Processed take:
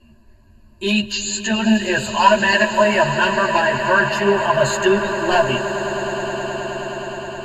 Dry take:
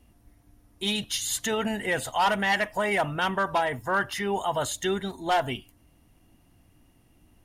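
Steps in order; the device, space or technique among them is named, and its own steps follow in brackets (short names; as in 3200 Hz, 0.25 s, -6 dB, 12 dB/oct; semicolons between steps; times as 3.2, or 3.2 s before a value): string-machine ensemble chorus (ensemble effect; LPF 6100 Hz 12 dB/oct); 1.12–1.69 Chebyshev low-pass 7300 Hz, order 5; ripple EQ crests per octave 1.4, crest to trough 18 dB; swelling echo 0.105 s, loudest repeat 8, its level -16 dB; gain +8.5 dB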